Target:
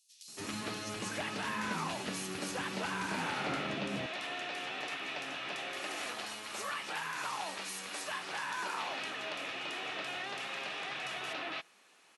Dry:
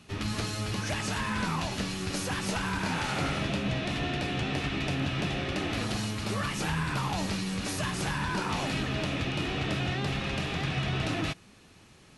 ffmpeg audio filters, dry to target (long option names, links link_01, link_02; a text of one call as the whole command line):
ffmpeg -i in.wav -filter_complex "[0:a]asetnsamples=nb_out_samples=441:pad=0,asendcmd='3.78 highpass f 620',highpass=230,acrossover=split=4800[link_01][link_02];[link_01]adelay=280[link_03];[link_03][link_02]amix=inputs=2:normalize=0,volume=-3.5dB" out.wav